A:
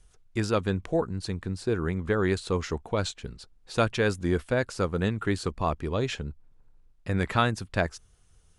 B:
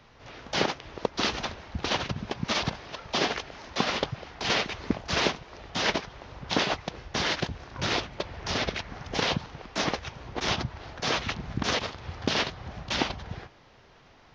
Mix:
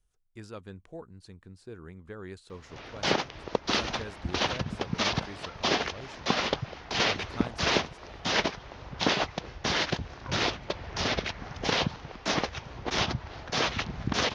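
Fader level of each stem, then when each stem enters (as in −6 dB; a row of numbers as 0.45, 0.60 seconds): −17.0, 0.0 decibels; 0.00, 2.50 seconds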